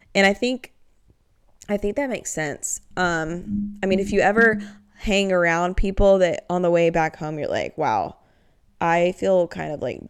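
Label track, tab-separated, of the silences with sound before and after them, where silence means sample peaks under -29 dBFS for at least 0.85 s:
0.650000	1.620000	silence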